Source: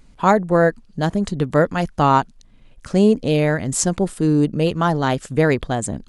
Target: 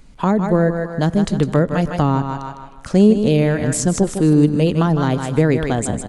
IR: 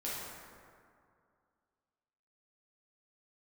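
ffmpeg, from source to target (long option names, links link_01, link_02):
-filter_complex "[0:a]aecho=1:1:155|310|465|620:0.335|0.114|0.0387|0.0132,asplit=2[link_01][link_02];[1:a]atrim=start_sample=2205[link_03];[link_02][link_03]afir=irnorm=-1:irlink=0,volume=-26dB[link_04];[link_01][link_04]amix=inputs=2:normalize=0,acrossover=split=380[link_05][link_06];[link_06]acompressor=threshold=-23dB:ratio=10[link_07];[link_05][link_07]amix=inputs=2:normalize=0,volume=3.5dB"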